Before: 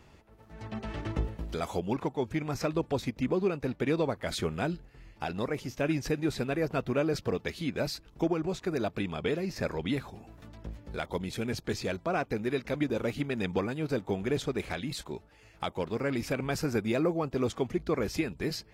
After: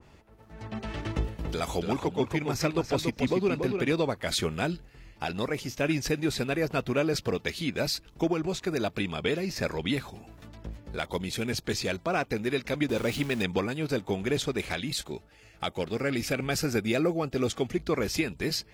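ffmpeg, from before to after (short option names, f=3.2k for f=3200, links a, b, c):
-filter_complex "[0:a]asettb=1/sr,asplit=3[a][b][c];[a]atrim=end=1.154[d];[b]atrim=start=1.15:end=3.93,asetpts=PTS-STARTPTS,afade=t=in:d=0.004:c=qsin,afade=t=out:st=2.776:d=0.004:c=qsin,asplit=2[e][f];[f]adelay=285,lowpass=f=3.5k:p=1,volume=-5dB,asplit=2[g][h];[h]adelay=285,lowpass=f=3.5k:p=1,volume=0.17,asplit=2[i][j];[j]adelay=285,lowpass=f=3.5k:p=1,volume=0.17[k];[e][g][i][k]amix=inputs=4:normalize=0,atrim=end_sample=122598[l];[c]atrim=start=3.926[m];[d][l]acrossfade=d=0.004:c1=hsin:c2=qsin[n];[n][m]acrossfade=d=0.004:c1=qsin:c2=hsin,asettb=1/sr,asplit=3[o][p][q];[o]atrim=end=12.894[r];[p]atrim=start=12.89:end=13.43,asetpts=PTS-STARTPTS,afade=t=in:d=0.004:c=qsin,afade=t=out:st=0.536:d=0.004:c=qsin,aeval=exprs='val(0)+0.5*0.00944*sgn(val(0))':c=same[s];[q]atrim=start=13.426[t];[r][s]acrossfade=d=0.004:c1=hsin:c2=qsin[u];[u][t]acrossfade=d=0.004:c1=qsin:c2=hsin,asettb=1/sr,asplit=3[v][w][x];[v]atrim=end=14.904[y];[w]atrim=start=14.9:end=17.72,asetpts=PTS-STARTPTS,afade=t=in:d=0.004:c=qsin,afade=t=out:st=2.816:d=0.004:c=qsin,bandreject=f=1k:w=5.6[z];[x]atrim=start=17.716[aa];[y][z]acrossfade=d=0.004:c1=hsin:c2=qsin[ab];[ab][aa]acrossfade=d=0.004:c1=qsin:c2=hsin,adynamicequalizer=threshold=0.00447:dfrequency=1900:dqfactor=0.7:tfrequency=1900:tqfactor=0.7:attack=5:release=100:ratio=0.375:range=3:mode=boostabove:tftype=highshelf,volume=1.5dB"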